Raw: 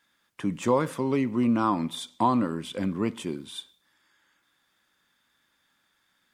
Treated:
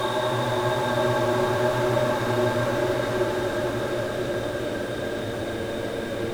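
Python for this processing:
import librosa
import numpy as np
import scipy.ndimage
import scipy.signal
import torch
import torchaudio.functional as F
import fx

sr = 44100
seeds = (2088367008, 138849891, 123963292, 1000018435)

y = fx.cycle_switch(x, sr, every=2, mode='inverted')
y = fx.granulator(y, sr, seeds[0], grain_ms=100.0, per_s=20.0, spray_ms=100.0, spread_st=0)
y = fx.paulstretch(y, sr, seeds[1], factor=8.2, window_s=1.0, from_s=2.1)
y = fx.small_body(y, sr, hz=(560.0, 1600.0, 3700.0), ring_ms=35, db=13)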